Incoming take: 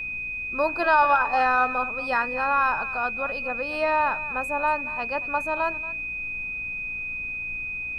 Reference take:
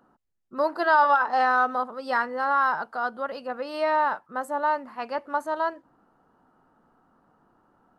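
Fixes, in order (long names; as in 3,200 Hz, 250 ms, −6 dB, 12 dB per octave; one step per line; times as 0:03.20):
hum removal 58.2 Hz, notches 5
notch filter 2,500 Hz, Q 30
noise reduction from a noise print 30 dB
echo removal 232 ms −16 dB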